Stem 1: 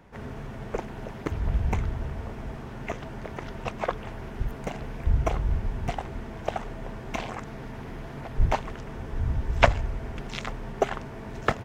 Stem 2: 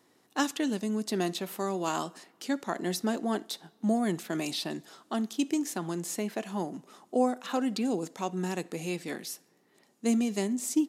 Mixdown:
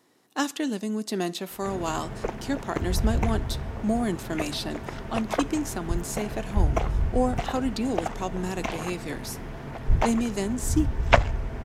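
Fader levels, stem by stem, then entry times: +1.0, +1.5 dB; 1.50, 0.00 s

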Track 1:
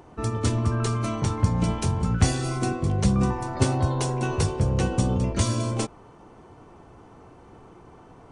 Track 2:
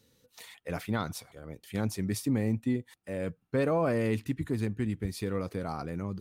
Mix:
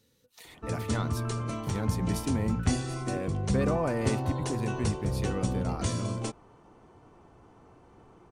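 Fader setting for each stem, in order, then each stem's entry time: -7.0, -2.0 dB; 0.45, 0.00 s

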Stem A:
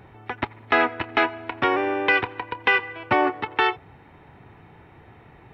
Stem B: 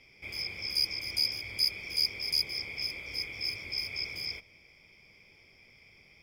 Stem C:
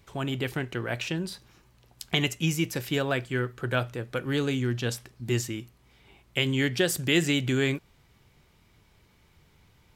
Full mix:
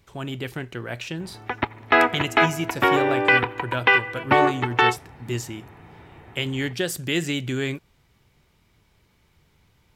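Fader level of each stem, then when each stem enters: +2.5 dB, off, -1.0 dB; 1.20 s, off, 0.00 s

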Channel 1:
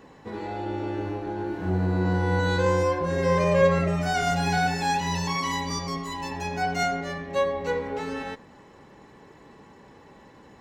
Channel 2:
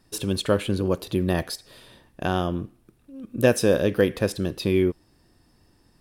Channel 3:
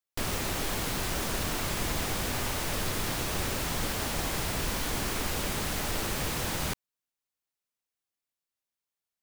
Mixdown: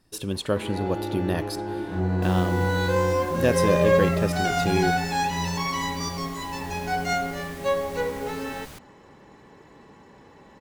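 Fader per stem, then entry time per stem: 0.0, -3.5, -12.0 dB; 0.30, 0.00, 2.05 s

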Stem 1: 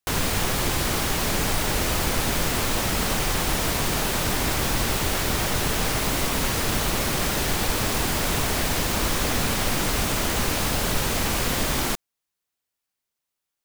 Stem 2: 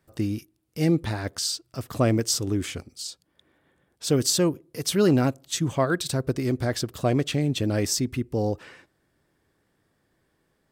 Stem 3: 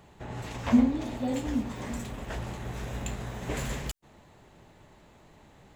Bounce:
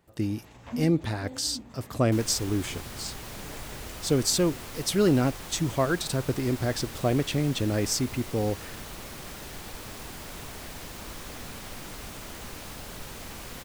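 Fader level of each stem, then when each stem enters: -16.5, -2.0, -13.0 dB; 2.05, 0.00, 0.00 s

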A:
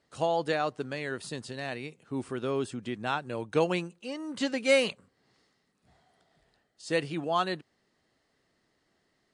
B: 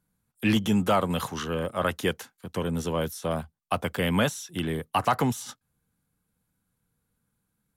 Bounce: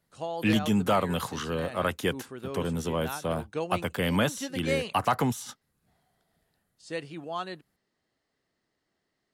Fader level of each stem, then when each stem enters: -6.5, -1.5 dB; 0.00, 0.00 s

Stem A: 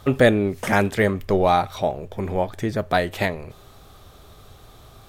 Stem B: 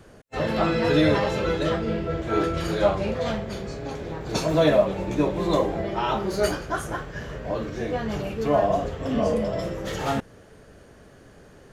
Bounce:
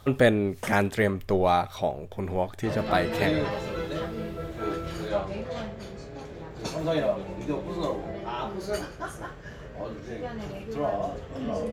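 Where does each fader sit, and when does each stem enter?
-4.5, -7.5 dB; 0.00, 2.30 s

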